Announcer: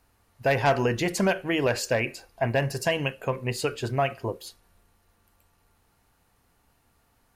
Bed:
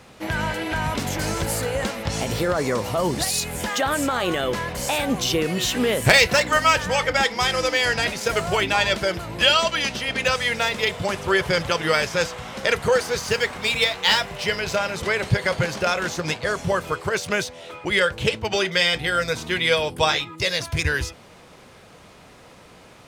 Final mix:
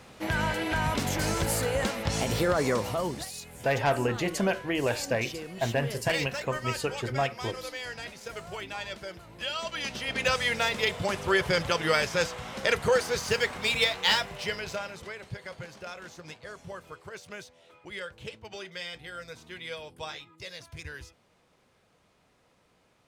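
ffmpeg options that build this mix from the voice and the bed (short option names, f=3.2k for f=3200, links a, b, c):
-filter_complex "[0:a]adelay=3200,volume=-3.5dB[a];[1:a]volume=9.5dB,afade=t=out:st=2.71:d=0.59:silence=0.199526,afade=t=in:st=9.52:d=0.78:silence=0.237137,afade=t=out:st=13.96:d=1.2:silence=0.188365[b];[a][b]amix=inputs=2:normalize=0"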